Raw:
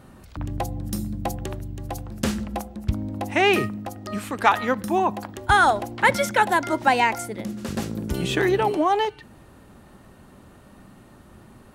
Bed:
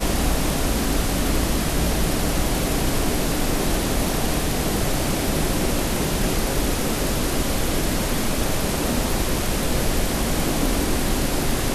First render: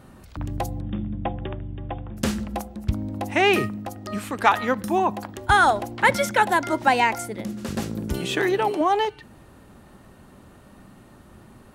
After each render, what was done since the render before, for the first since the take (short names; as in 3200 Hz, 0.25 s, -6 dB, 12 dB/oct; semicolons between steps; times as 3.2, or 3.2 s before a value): 0.8–2.17 brick-wall FIR low-pass 3700 Hz; 8.18–8.81 HPF 250 Hz 6 dB/oct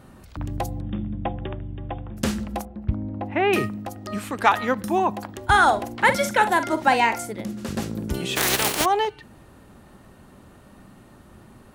2.65–3.53 air absorption 480 m; 5.46–7.32 doubler 47 ms -11 dB; 8.35–8.84 spectral contrast lowered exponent 0.27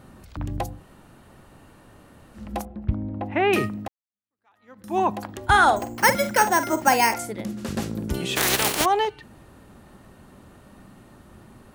0.71–2.45 room tone, crossfade 0.24 s; 3.88–4.99 fade in exponential; 5.76–7.14 careless resampling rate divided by 6×, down filtered, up hold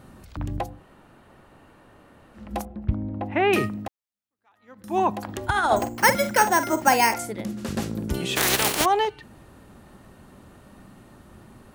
0.59–2.51 tone controls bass -5 dB, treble -8 dB; 5.27–5.89 negative-ratio compressor -19 dBFS, ratio -0.5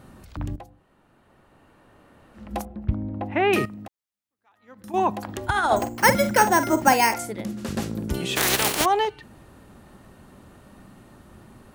0.56–2.46 fade in linear, from -14.5 dB; 3.65–4.94 compressor, threshold -35 dBFS; 6.05–6.93 low shelf 380 Hz +6.5 dB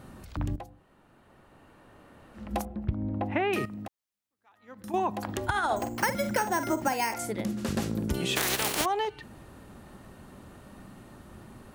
compressor 12:1, threshold -24 dBFS, peak gain reduction 13 dB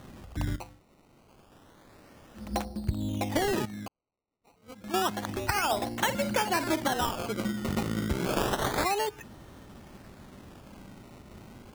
decimation with a swept rate 18×, swing 100% 0.29 Hz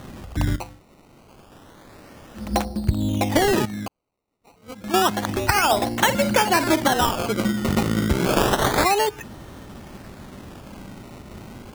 gain +9 dB